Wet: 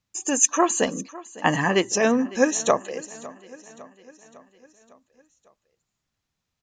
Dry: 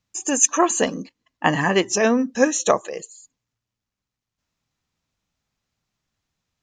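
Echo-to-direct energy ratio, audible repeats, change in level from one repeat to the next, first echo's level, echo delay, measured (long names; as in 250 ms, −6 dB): −18.0 dB, 4, −5.0 dB, −19.5 dB, 554 ms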